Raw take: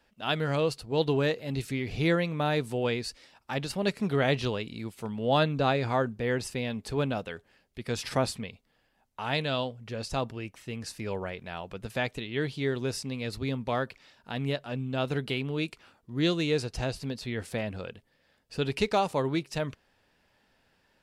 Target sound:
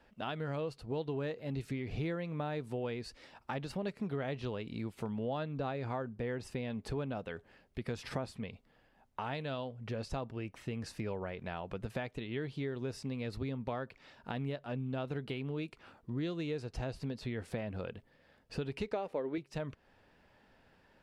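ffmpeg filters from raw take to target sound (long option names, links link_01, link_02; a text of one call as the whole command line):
ffmpeg -i in.wav -filter_complex "[0:a]asettb=1/sr,asplit=3[link_01][link_02][link_03];[link_01]atrim=end=18.934[link_04];[link_02]atrim=start=18.93:end=19.38,asetpts=PTS-STARTPTS,afade=type=in:duration=0.004:curve=qsin,afade=type=out:start_time=0.446:duration=0.004:curve=qsin,equalizer=frequency=125:width_type=o:width=1:gain=-11,equalizer=frequency=250:width_type=o:width=1:gain=4,equalizer=frequency=500:width_type=o:width=1:gain=9,equalizer=frequency=1000:width_type=o:width=1:gain=-3,equalizer=frequency=2000:width_type=o:width=1:gain=7,equalizer=frequency=8000:width_type=o:width=1:gain=-6[link_05];[link_03]atrim=start=19.376[link_06];[link_04][link_05]acrossfade=duration=0.004:curve1=hsin:curve2=qsin[link_07];[link_07][link_06]acrossfade=duration=0.004:curve1=qsin:curve2=hsin,acompressor=threshold=-40dB:ratio=5,highshelf=frequency=3100:gain=-12,volume=4.5dB" out.wav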